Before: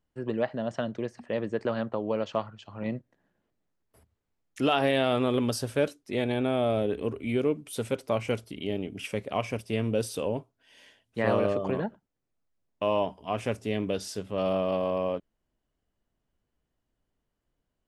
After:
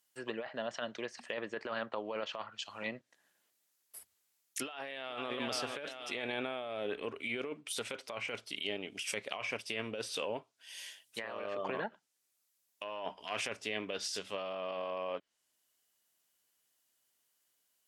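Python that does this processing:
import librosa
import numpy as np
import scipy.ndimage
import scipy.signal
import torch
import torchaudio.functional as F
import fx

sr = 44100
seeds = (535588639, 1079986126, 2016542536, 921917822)

y = fx.echo_throw(x, sr, start_s=4.63, length_s=0.7, ms=450, feedback_pct=45, wet_db=-12.5)
y = fx.transient(y, sr, attack_db=-10, sustain_db=3, at=(12.83, 13.43))
y = fx.env_lowpass_down(y, sr, base_hz=2200.0, full_db=-26.5)
y = np.diff(y, prepend=0.0)
y = fx.over_compress(y, sr, threshold_db=-52.0, ratio=-1.0)
y = y * librosa.db_to_amplitude(13.5)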